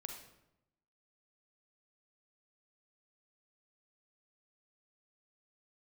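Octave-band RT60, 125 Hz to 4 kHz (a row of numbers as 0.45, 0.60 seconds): 1.0, 1.0, 0.90, 0.80, 0.70, 0.60 seconds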